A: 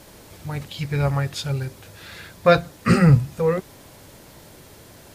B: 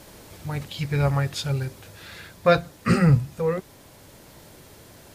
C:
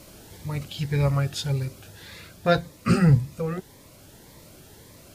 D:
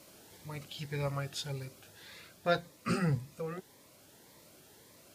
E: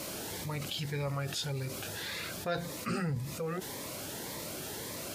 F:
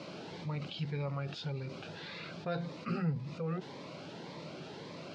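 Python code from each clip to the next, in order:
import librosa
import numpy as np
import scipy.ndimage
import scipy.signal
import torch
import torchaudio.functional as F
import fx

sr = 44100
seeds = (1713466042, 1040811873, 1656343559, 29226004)

y1 = fx.rider(x, sr, range_db=4, speed_s=2.0)
y1 = y1 * librosa.db_to_amplitude(-4.0)
y2 = fx.notch_cascade(y1, sr, direction='rising', hz=1.8)
y3 = fx.highpass(y2, sr, hz=280.0, slope=6)
y3 = y3 * librosa.db_to_amplitude(-7.5)
y4 = fx.env_flatten(y3, sr, amount_pct=70)
y4 = y4 * librosa.db_to_amplitude(-6.0)
y5 = fx.cabinet(y4, sr, low_hz=140.0, low_slope=12, high_hz=4200.0, hz=(160.0, 1800.0, 3400.0), db=(9, -7, -4))
y5 = y5 * librosa.db_to_amplitude(-3.0)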